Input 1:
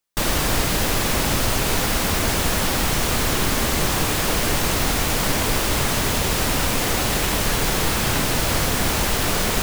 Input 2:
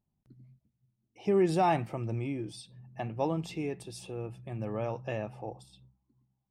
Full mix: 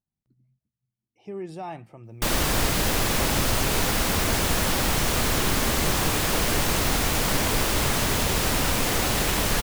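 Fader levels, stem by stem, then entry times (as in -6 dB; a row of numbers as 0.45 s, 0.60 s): -2.5 dB, -9.5 dB; 2.05 s, 0.00 s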